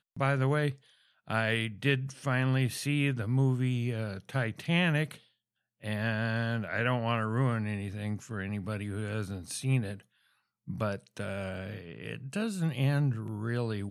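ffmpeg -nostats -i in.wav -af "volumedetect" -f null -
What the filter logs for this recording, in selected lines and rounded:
mean_volume: -31.5 dB
max_volume: -13.1 dB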